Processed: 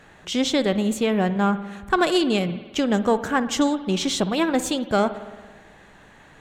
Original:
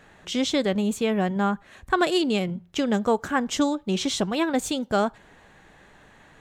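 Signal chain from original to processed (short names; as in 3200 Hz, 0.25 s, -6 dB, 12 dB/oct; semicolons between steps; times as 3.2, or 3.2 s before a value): in parallel at -8.5 dB: one-sided clip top -29 dBFS; on the sum: spring tank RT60 1.4 s, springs 55 ms, chirp 35 ms, DRR 12.5 dB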